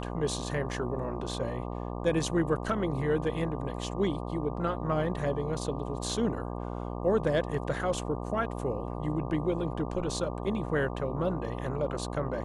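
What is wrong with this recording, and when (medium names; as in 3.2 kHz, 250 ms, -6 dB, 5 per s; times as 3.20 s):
buzz 60 Hz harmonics 20 -36 dBFS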